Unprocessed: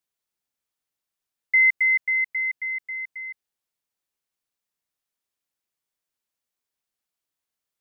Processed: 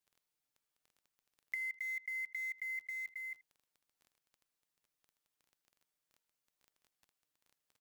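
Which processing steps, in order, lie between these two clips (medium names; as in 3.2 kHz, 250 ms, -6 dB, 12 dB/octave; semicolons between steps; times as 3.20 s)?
block-companded coder 5-bit; comb 6.6 ms, depth 88%; compression 16:1, threshold -33 dBFS, peak gain reduction 14.5 dB; crackle 15 per s -47 dBFS; speakerphone echo 80 ms, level -20 dB; trim -5 dB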